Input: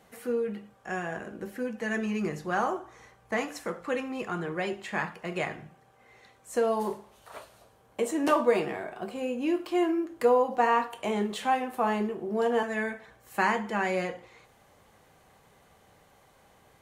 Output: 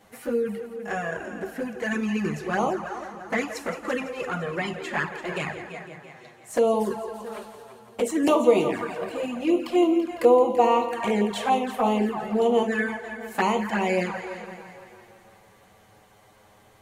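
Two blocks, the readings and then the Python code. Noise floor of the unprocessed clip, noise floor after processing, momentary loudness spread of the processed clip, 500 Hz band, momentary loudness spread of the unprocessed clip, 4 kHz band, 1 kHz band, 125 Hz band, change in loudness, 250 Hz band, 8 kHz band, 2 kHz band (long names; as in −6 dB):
−61 dBFS, −56 dBFS, 16 LU, +5.5 dB, 13 LU, +5.0 dB, +3.0 dB, +5.0 dB, +4.5 dB, +5.5 dB, +4.5 dB, +2.5 dB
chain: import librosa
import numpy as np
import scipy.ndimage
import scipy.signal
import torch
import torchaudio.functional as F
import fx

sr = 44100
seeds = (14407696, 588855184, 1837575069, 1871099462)

y = fx.echo_heads(x, sr, ms=168, heads='first and second', feedback_pct=51, wet_db=-13.0)
y = fx.env_flanger(y, sr, rest_ms=10.3, full_db=-23.0)
y = y * 10.0 ** (6.5 / 20.0)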